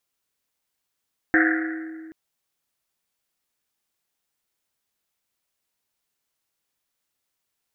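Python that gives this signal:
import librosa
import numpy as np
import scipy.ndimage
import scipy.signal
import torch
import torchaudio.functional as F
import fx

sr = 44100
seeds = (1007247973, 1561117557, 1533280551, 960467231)

y = fx.risset_drum(sr, seeds[0], length_s=0.78, hz=320.0, decay_s=2.27, noise_hz=1700.0, noise_width_hz=540.0, noise_pct=45)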